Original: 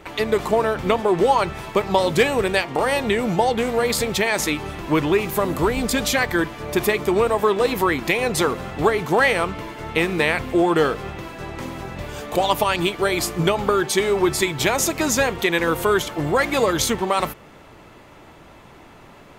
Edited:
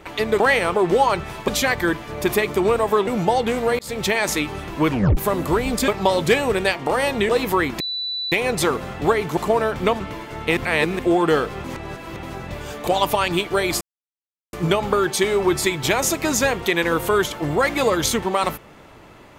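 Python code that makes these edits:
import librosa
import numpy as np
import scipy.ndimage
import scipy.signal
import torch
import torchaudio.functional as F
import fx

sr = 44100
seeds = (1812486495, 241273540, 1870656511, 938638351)

y = fx.edit(x, sr, fx.swap(start_s=0.4, length_s=0.63, other_s=9.14, other_length_s=0.34),
    fx.swap(start_s=1.77, length_s=1.41, other_s=5.99, other_length_s=1.59),
    fx.fade_in_span(start_s=3.9, length_s=0.25),
    fx.tape_stop(start_s=5.03, length_s=0.25),
    fx.insert_tone(at_s=8.09, length_s=0.52, hz=3970.0, db=-23.5),
    fx.reverse_span(start_s=10.05, length_s=0.42),
    fx.reverse_span(start_s=11.12, length_s=0.59),
    fx.insert_silence(at_s=13.29, length_s=0.72), tone=tone)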